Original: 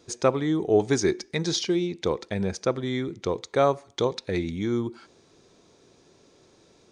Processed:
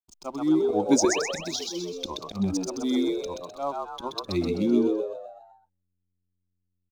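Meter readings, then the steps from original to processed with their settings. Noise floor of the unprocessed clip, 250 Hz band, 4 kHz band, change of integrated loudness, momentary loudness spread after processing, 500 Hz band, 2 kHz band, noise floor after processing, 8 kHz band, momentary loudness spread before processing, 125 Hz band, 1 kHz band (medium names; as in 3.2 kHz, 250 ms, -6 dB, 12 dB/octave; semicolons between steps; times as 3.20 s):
-59 dBFS, +2.5 dB, -0.5 dB, -0.5 dB, 12 LU, -3.0 dB, -2.5 dB, -79 dBFS, +3.5 dB, 7 LU, -6.5 dB, -2.0 dB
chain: expander on every frequency bin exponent 1.5; level rider gain up to 7 dB; slow attack 120 ms; square tremolo 0.5 Hz, depth 65%, duty 70%; hysteresis with a dead band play -43 dBFS; static phaser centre 470 Hz, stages 6; painted sound rise, 0.89–1.19 s, 240–3300 Hz -33 dBFS; frequency-shifting echo 128 ms, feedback 47%, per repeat +90 Hz, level -3.5 dB; trim +1.5 dB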